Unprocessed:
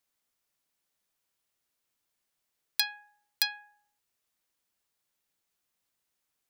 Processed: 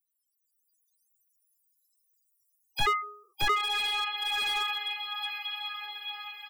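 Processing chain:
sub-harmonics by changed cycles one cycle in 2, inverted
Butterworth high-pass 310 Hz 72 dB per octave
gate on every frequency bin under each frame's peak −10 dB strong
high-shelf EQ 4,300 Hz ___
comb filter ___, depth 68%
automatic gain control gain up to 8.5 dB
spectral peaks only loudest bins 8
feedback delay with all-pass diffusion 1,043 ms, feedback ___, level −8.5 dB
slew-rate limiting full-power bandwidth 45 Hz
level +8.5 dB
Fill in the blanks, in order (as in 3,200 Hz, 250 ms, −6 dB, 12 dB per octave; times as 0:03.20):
+5.5 dB, 2.5 ms, 45%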